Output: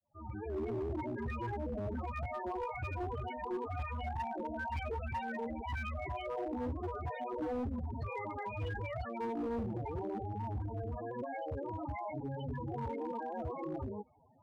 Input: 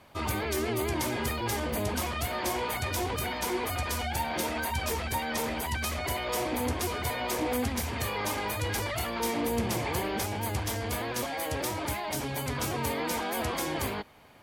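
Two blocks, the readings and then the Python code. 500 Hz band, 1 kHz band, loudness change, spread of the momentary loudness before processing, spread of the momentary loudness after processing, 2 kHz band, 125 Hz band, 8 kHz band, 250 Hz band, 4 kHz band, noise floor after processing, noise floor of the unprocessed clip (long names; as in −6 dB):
−6.5 dB, −7.5 dB, −8.5 dB, 2 LU, 3 LU, −12.5 dB, −5.5 dB, below −35 dB, −6.5 dB, −22.5 dB, −44 dBFS, −35 dBFS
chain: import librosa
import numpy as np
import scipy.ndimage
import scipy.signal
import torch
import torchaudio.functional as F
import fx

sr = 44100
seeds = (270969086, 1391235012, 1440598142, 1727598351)

y = fx.fade_in_head(x, sr, length_s=0.59)
y = fx.spec_topn(y, sr, count=8)
y = np.clip(y, -10.0 ** (-29.5 / 20.0), 10.0 ** (-29.5 / 20.0))
y = y * 10.0 ** (-3.5 / 20.0)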